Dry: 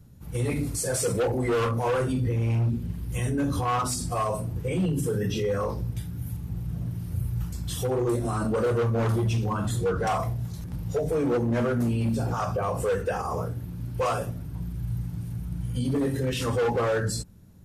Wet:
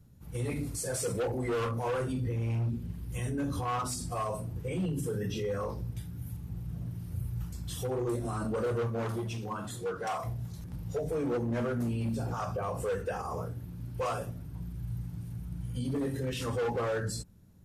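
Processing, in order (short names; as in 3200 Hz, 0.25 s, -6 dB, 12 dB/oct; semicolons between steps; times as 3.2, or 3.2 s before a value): 8.87–10.23 HPF 130 Hz -> 480 Hz 6 dB/oct; gain -6.5 dB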